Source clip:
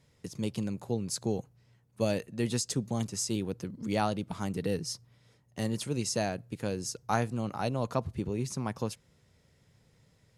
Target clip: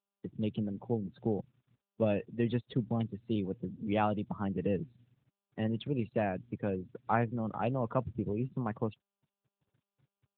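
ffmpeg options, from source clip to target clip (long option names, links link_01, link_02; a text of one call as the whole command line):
ffmpeg -i in.wav -af "afftfilt=real='re*gte(hypot(re,im),0.00891)':imag='im*gte(hypot(re,im),0.00891)':win_size=1024:overlap=0.75" -ar 8000 -c:a libopencore_amrnb -b:a 10200 out.amr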